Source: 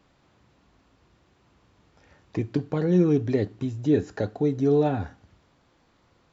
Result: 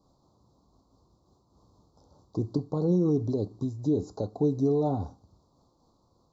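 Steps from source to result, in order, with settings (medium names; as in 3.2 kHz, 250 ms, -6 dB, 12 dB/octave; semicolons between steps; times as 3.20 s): elliptic band-stop 1.1–4.2 kHz, stop band 50 dB; peak limiter -15 dBFS, peak gain reduction 4.5 dB; random flutter of the level, depth 55%; trim +1 dB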